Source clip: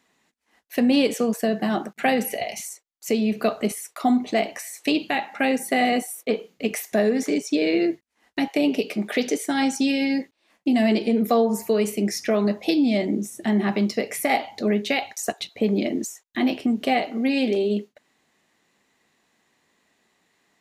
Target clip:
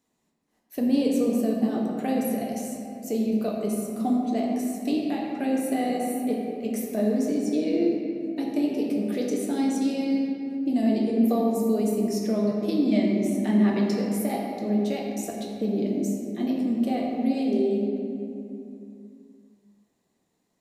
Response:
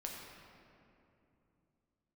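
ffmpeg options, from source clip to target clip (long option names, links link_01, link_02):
-filter_complex "[0:a]asetnsamples=nb_out_samples=441:pad=0,asendcmd='12.92 equalizer g -3.5;13.95 equalizer g -15',equalizer=frequency=2000:width=0.52:gain=-13.5[link_01];[1:a]atrim=start_sample=2205[link_02];[link_01][link_02]afir=irnorm=-1:irlink=0"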